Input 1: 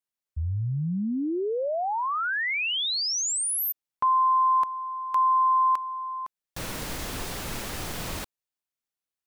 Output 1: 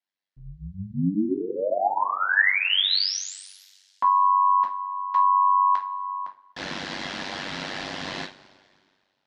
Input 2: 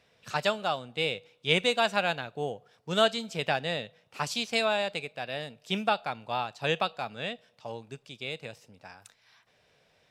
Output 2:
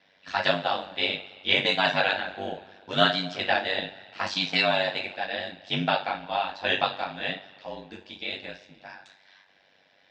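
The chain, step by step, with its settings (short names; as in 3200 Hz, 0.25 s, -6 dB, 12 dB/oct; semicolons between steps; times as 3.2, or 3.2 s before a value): speaker cabinet 270–4700 Hz, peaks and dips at 460 Hz -10 dB, 1200 Hz -7 dB, 1700 Hz +3 dB, 2500 Hz -4 dB; two-slope reverb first 0.26 s, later 2 s, from -22 dB, DRR -2 dB; ring modulator 48 Hz; gain +5 dB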